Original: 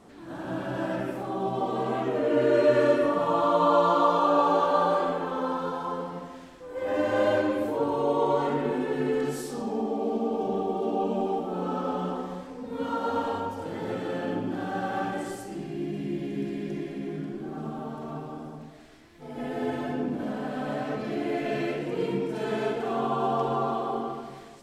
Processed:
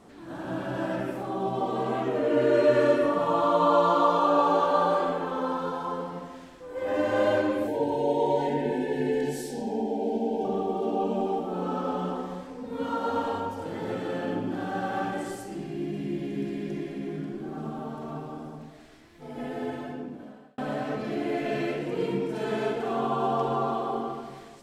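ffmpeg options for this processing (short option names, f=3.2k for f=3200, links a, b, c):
-filter_complex "[0:a]asettb=1/sr,asplit=3[a][b][c];[a]atrim=end=7.674[d];[b]atrim=start=7.67:end=10.45,asetpts=PTS-STARTPTS,afade=t=in:d=0.004:c=qsin,afade=t=out:st=2.776:d=0.004:c=qsin,asuperstop=centerf=1200:order=20:qfactor=2.2[e];[c]atrim=start=10.446[f];[d][e]acrossfade=d=0.004:c1=hsin:c2=qsin[g];[g][f]acrossfade=d=0.004:c1=qsin:c2=hsin,asplit=2[h][i];[h]atrim=end=20.58,asetpts=PTS-STARTPTS,afade=t=out:st=19.27:d=1.31[j];[i]atrim=start=20.58,asetpts=PTS-STARTPTS,afade=t=in:d=0.004:c=hsin[k];[j][k]concat=n=2:v=0:a=1"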